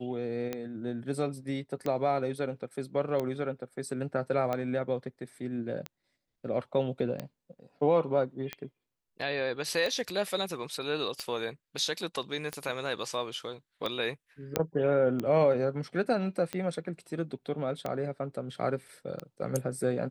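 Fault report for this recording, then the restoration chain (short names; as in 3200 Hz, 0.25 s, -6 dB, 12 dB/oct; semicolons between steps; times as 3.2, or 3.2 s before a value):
tick 45 rpm -19 dBFS
14.56 pop -11 dBFS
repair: de-click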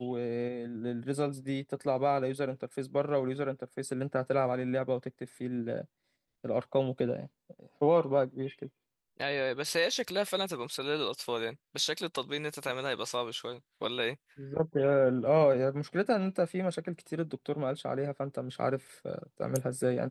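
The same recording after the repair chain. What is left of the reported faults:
none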